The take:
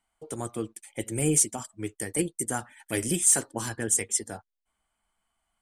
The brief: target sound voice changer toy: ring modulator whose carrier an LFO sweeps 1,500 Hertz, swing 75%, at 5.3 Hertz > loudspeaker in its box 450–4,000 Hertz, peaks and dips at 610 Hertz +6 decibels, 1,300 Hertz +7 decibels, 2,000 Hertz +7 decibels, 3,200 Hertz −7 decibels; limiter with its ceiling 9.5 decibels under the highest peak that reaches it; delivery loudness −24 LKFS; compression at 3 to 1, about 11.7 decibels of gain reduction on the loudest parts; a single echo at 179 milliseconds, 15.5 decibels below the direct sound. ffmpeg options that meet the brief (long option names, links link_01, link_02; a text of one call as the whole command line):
ffmpeg -i in.wav -af "acompressor=threshold=-33dB:ratio=3,alimiter=level_in=5dB:limit=-24dB:level=0:latency=1,volume=-5dB,aecho=1:1:179:0.168,aeval=exprs='val(0)*sin(2*PI*1500*n/s+1500*0.75/5.3*sin(2*PI*5.3*n/s))':channel_layout=same,highpass=450,equalizer=frequency=610:width_type=q:width=4:gain=6,equalizer=frequency=1300:width_type=q:width=4:gain=7,equalizer=frequency=2000:width_type=q:width=4:gain=7,equalizer=frequency=3200:width_type=q:width=4:gain=-7,lowpass=frequency=4000:width=0.5412,lowpass=frequency=4000:width=1.3066,volume=17.5dB" out.wav